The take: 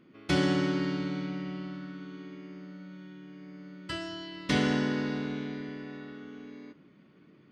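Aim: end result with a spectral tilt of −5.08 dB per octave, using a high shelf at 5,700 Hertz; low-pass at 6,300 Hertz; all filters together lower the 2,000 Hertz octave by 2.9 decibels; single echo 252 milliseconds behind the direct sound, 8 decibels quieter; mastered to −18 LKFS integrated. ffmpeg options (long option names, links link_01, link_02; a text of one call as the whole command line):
ffmpeg -i in.wav -af "lowpass=6300,equalizer=frequency=2000:width_type=o:gain=-4.5,highshelf=frequency=5700:gain=5.5,aecho=1:1:252:0.398,volume=13dB" out.wav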